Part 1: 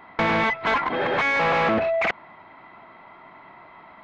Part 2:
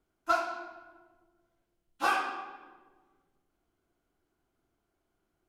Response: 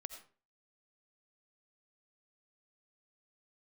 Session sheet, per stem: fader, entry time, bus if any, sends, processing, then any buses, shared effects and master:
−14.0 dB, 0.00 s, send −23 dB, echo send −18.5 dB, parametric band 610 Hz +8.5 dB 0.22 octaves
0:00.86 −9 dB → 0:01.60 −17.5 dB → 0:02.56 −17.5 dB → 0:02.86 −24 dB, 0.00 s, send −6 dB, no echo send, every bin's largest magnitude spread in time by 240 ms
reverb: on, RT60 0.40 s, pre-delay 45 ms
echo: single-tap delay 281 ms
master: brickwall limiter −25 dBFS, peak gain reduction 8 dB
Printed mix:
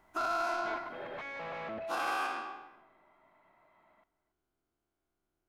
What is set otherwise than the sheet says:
stem 1 −14.0 dB → −21.5 dB
stem 2 −9.0 dB → 0.0 dB

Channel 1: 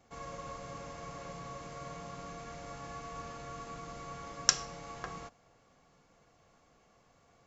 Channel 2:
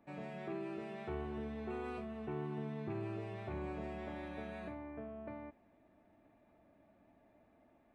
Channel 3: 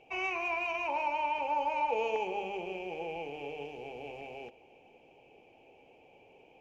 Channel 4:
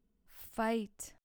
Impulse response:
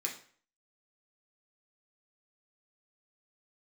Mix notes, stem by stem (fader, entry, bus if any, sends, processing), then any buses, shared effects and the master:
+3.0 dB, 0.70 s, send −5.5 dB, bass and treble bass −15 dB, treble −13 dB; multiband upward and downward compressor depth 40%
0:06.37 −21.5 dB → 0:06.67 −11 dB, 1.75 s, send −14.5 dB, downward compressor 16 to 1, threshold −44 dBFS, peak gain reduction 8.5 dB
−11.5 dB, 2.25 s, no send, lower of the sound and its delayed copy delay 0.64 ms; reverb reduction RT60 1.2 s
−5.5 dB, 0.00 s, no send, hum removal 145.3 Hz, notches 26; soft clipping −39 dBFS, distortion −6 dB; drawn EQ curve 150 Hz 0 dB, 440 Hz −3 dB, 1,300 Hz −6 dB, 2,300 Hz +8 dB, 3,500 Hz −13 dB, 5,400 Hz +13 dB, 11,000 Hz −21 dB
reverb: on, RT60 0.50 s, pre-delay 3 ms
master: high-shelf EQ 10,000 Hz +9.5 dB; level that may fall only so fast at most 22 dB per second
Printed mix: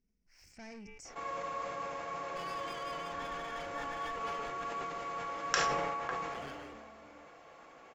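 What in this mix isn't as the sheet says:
stem 1: entry 0.70 s → 1.05 s
master: missing high-shelf EQ 10,000 Hz +9.5 dB

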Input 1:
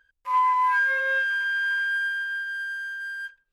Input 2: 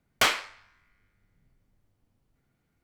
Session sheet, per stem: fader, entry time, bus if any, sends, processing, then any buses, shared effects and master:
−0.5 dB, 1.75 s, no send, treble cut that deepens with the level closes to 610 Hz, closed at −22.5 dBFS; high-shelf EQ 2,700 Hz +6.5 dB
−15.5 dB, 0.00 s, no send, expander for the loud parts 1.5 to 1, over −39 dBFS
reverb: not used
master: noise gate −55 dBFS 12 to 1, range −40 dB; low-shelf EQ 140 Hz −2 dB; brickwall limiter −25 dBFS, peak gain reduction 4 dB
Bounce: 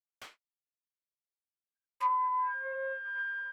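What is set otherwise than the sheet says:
stem 2 −15.5 dB → −26.5 dB
master: missing brickwall limiter −25 dBFS, peak gain reduction 4 dB

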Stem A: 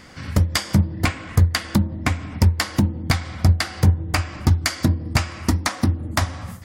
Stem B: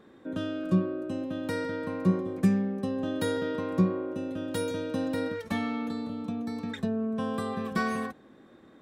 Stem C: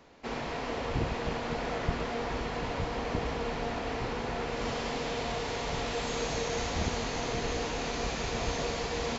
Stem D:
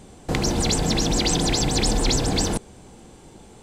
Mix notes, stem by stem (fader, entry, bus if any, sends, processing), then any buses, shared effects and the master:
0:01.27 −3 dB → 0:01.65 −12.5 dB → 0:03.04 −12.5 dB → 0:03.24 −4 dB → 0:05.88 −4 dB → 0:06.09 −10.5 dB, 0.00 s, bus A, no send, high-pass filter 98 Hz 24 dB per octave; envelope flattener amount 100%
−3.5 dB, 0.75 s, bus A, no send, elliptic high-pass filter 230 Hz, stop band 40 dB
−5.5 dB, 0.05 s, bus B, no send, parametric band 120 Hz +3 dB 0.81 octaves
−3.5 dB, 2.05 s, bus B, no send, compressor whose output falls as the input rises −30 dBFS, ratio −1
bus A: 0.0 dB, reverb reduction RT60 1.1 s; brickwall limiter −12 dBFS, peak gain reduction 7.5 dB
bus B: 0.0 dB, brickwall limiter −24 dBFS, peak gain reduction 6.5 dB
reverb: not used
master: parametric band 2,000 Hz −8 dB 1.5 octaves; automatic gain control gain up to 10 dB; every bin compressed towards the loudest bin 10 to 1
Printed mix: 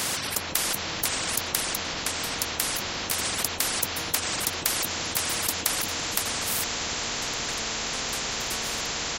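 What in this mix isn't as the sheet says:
stem A −3.0 dB → −10.5 dB
stem D: muted

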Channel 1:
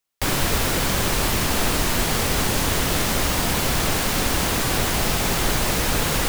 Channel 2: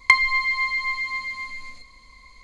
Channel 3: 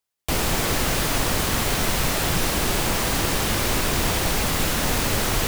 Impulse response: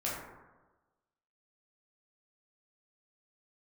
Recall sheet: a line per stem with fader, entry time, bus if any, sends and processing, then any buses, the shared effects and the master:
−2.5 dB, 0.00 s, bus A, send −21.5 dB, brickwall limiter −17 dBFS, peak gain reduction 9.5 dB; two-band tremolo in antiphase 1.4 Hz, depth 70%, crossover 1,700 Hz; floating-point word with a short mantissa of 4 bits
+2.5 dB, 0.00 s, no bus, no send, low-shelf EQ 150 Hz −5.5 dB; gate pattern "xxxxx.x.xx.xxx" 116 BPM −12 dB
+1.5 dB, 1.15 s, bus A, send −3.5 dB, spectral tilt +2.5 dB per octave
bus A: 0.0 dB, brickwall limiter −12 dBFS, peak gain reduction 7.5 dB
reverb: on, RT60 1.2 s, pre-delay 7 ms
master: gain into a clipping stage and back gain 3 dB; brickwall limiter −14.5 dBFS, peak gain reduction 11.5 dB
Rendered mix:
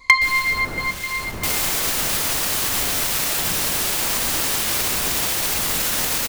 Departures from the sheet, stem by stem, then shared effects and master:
stem 3: send off
master: missing brickwall limiter −14.5 dBFS, peak gain reduction 11.5 dB

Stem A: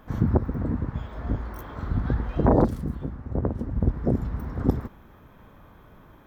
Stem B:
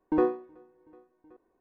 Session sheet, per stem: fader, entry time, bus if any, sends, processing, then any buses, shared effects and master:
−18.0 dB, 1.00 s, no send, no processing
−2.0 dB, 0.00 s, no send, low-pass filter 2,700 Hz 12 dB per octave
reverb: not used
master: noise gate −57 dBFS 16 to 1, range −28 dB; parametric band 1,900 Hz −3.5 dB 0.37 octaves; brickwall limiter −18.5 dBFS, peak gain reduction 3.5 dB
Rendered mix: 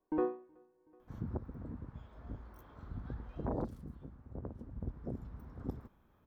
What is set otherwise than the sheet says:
stem B −2.0 dB → −8.5 dB
master: missing noise gate −57 dBFS 16 to 1, range −28 dB

